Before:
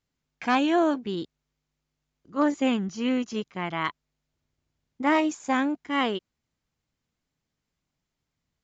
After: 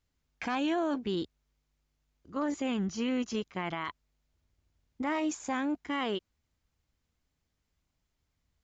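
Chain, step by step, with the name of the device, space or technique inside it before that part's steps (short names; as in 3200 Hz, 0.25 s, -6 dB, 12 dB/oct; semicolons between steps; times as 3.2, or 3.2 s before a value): car stereo with a boomy subwoofer (resonant low shelf 100 Hz +7 dB, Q 1.5; limiter -24 dBFS, peak gain reduction 10 dB)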